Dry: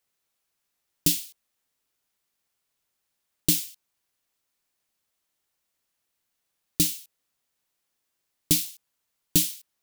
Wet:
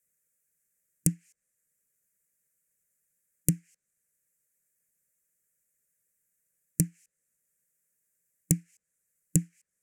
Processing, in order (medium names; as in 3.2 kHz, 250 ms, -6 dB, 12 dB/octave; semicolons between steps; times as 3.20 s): low-pass that closes with the level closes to 920 Hz, closed at -21 dBFS; harmonic-percussive split harmonic -7 dB; FFT filter 110 Hz 0 dB, 170 Hz +7 dB, 300 Hz -7 dB, 530 Hz +3 dB, 880 Hz -22 dB, 1.7 kHz +2 dB, 2.4 kHz -4 dB, 3.6 kHz -27 dB, 7.3 kHz +9 dB, 16 kHz +7 dB